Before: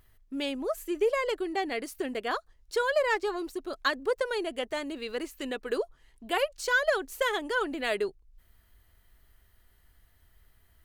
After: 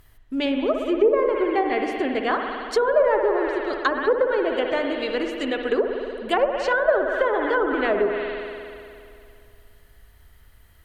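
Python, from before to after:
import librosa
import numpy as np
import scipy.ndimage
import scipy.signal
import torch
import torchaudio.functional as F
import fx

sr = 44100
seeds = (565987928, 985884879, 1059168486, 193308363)

y = fx.rev_spring(x, sr, rt60_s=2.5, pass_ms=(58,), chirp_ms=35, drr_db=3.0)
y = fx.env_lowpass_down(y, sr, base_hz=990.0, full_db=-23.0)
y = y * librosa.db_to_amplitude(8.0)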